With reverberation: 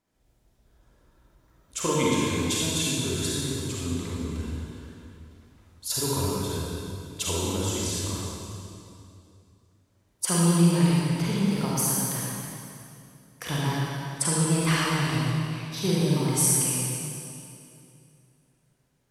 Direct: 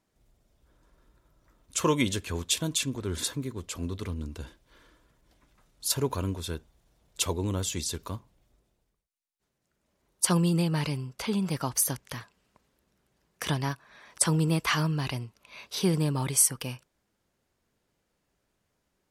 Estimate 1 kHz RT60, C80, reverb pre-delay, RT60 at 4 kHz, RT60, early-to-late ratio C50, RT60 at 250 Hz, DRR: 2.5 s, −2.0 dB, 34 ms, 2.3 s, 2.6 s, −4.5 dB, 2.9 s, −6.0 dB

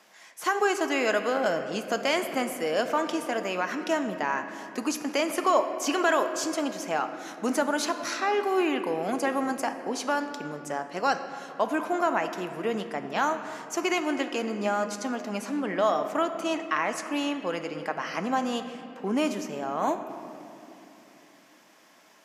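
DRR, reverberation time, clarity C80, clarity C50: 7.0 dB, 3.0 s, 9.5 dB, 9.0 dB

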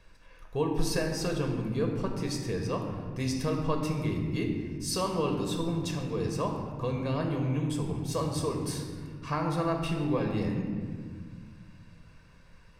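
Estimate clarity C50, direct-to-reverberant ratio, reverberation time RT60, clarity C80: 4.5 dB, 1.5 dB, 1.8 s, 5.5 dB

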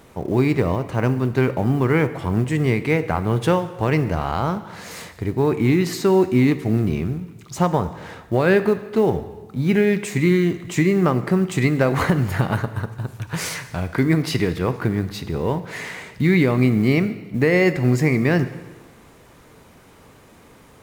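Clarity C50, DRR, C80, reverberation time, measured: 13.0 dB, 11.0 dB, 14.5 dB, 1.3 s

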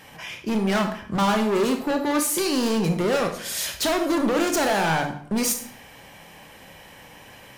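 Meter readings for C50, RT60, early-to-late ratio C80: 8.0 dB, 0.65 s, 12.0 dB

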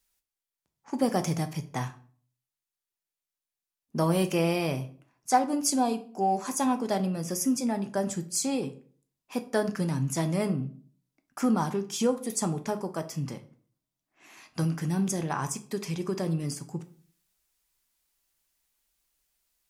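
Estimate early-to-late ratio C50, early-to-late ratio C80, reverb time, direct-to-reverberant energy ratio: 15.0 dB, 19.0 dB, 0.45 s, 7.5 dB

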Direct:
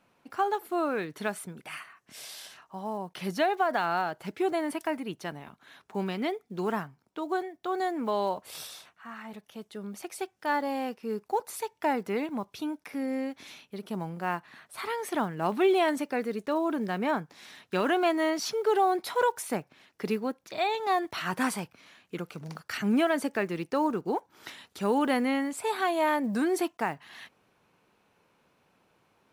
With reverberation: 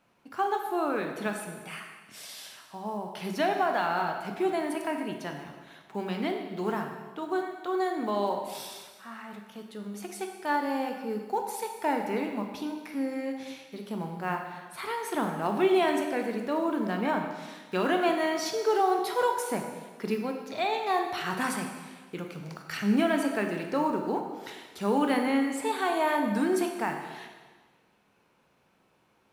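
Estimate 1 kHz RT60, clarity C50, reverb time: 1.4 s, 5.0 dB, 1.4 s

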